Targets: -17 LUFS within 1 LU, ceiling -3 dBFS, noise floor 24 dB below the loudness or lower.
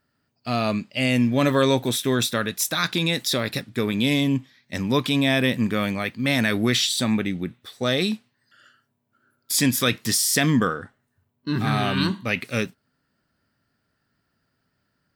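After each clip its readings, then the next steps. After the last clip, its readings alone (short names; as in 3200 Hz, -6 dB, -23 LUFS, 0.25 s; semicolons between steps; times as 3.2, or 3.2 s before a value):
loudness -22.5 LUFS; peak -7.5 dBFS; loudness target -17.0 LUFS
-> gain +5.5 dB; limiter -3 dBFS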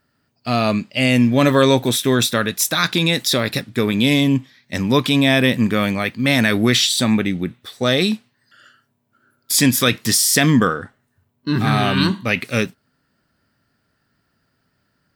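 loudness -17.0 LUFS; peak -3.0 dBFS; noise floor -68 dBFS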